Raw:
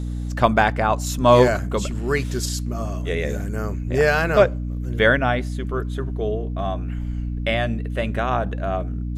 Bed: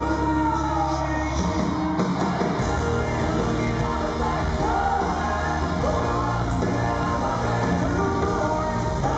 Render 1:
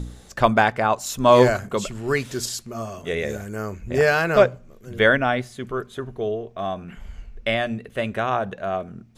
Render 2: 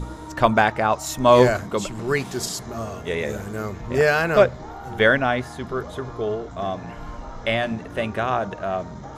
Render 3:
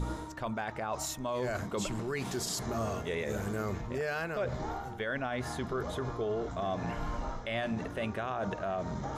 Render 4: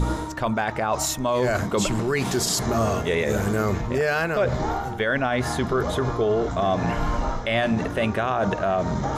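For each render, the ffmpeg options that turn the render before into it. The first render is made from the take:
-af "bandreject=f=60:t=h:w=4,bandreject=f=120:t=h:w=4,bandreject=f=180:t=h:w=4,bandreject=f=240:t=h:w=4,bandreject=f=300:t=h:w=4"
-filter_complex "[1:a]volume=-14.5dB[a];[0:a][a]amix=inputs=2:normalize=0"
-af "areverse,acompressor=threshold=-27dB:ratio=8,areverse,alimiter=level_in=1dB:limit=-24dB:level=0:latency=1:release=76,volume=-1dB"
-af "volume=11.5dB"

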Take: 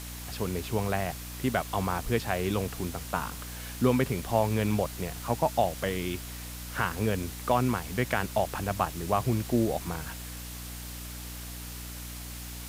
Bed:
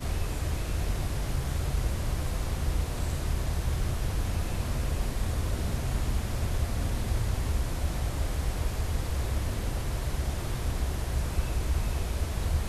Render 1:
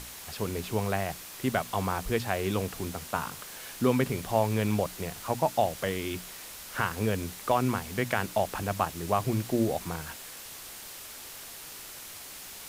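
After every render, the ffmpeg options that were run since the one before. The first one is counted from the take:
-af "bandreject=f=60:t=h:w=6,bandreject=f=120:t=h:w=6,bandreject=f=180:t=h:w=6,bandreject=f=240:t=h:w=6,bandreject=f=300:t=h:w=6"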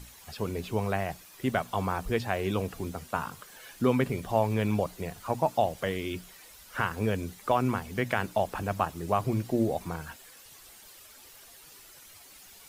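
-af "afftdn=nr=11:nf=-44"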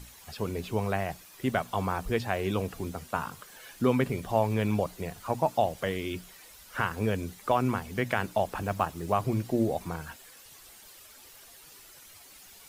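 -filter_complex "[0:a]asettb=1/sr,asplit=3[a][b][c];[a]atrim=end=8.614[d];[b]atrim=start=8.61:end=9.12,asetpts=PTS-STARTPTS,afade=t=in:d=0.004:c=qsin,afade=t=out:st=0.506:d=0.004:c=qsin,acrusher=bits=8:mode=log:mix=0:aa=0.000001[e];[c]atrim=start=9.116[f];[d][e]acrossfade=d=0.004:c1=hsin:c2=qsin[g];[g][f]acrossfade=d=0.004:c1=qsin:c2=hsin"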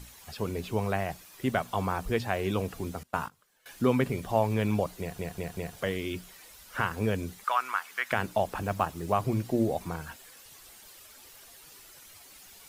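-filter_complex "[0:a]asettb=1/sr,asplit=3[a][b][c];[a]atrim=end=3.034[d];[b]atrim=start=3.03:end=3.66,asetpts=PTS-STARTPTS,afade=t=in:d=0.004:c=qsin,afade=t=out:st=0.626:d=0.004:c=qsin,agate=range=-20dB:threshold=-37dB:ratio=16:release=100:detection=peak[e];[c]atrim=start=3.656[f];[d][e]acrossfade=d=0.004:c1=hsin:c2=qsin[g];[g][f]acrossfade=d=0.004:c1=qsin:c2=hsin,asettb=1/sr,asplit=3[h][i][j];[h]atrim=end=7.444[k];[i]atrim=start=7.44:end=8.12,asetpts=PTS-STARTPTS,afade=t=in:d=0.004:c=qsin,afade=t=out:st=0.676:d=0.004:c=qsin,highpass=f=1.3k:t=q:w=2.4[l];[j]atrim=start=8.116[m];[k][l]acrossfade=d=0.004:c1=hsin:c2=qsin[n];[n][m]acrossfade=d=0.004:c1=qsin:c2=hsin,asplit=5[o][p][q][r][s];[o]atrim=end=5.192[t];[p]atrim=start=4.998:end=5.192[u];[q]atrim=start=4.998:end=5.192[v];[r]atrim=start=4.998:end=5.192[w];[s]atrim=start=5.758[x];[t][u]acrossfade=d=0.004:c1=hsin:c2=hsin[y];[y][v]acrossfade=d=0.004:c1=hsin:c2=hsin[z];[z][w]acrossfade=d=0.004:c1=hsin:c2=hsin[aa];[aa][x]acrossfade=d=0.004:c1=hsin:c2=hsin"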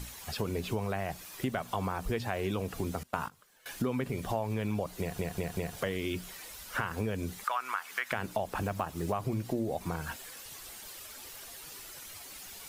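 -filter_complex "[0:a]asplit=2[a][b];[b]alimiter=limit=-21.5dB:level=0:latency=1,volume=-2dB[c];[a][c]amix=inputs=2:normalize=0,acompressor=threshold=-30dB:ratio=4"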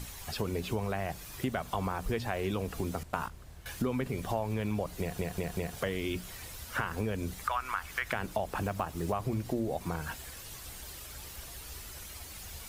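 -filter_complex "[1:a]volume=-21dB[a];[0:a][a]amix=inputs=2:normalize=0"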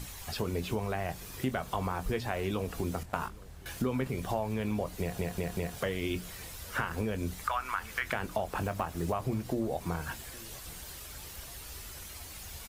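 -filter_complex "[0:a]asplit=2[a][b];[b]adelay=23,volume=-12dB[c];[a][c]amix=inputs=2:normalize=0,asplit=2[d][e];[e]adelay=816.3,volume=-22dB,highshelf=f=4k:g=-18.4[f];[d][f]amix=inputs=2:normalize=0"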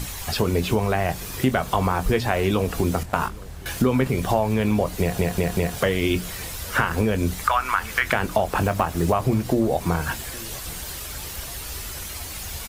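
-af "volume=11.5dB,alimiter=limit=-3dB:level=0:latency=1"

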